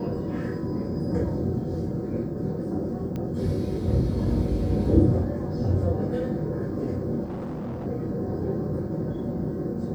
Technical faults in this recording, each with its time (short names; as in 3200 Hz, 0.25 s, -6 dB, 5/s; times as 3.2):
3.16 pop -21 dBFS
7.24–7.87 clipped -29.5 dBFS